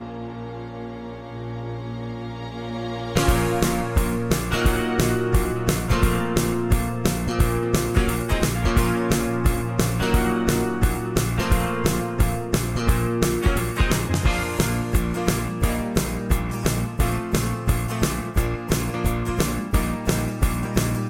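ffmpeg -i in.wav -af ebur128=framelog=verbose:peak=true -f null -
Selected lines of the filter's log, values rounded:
Integrated loudness:
  I:         -23.1 LUFS
  Threshold: -33.3 LUFS
Loudness range:
  LRA:         2.3 LU
  Threshold: -43.0 LUFS
  LRA low:   -24.3 LUFS
  LRA high:  -22.0 LUFS
True peak:
  Peak:       -7.5 dBFS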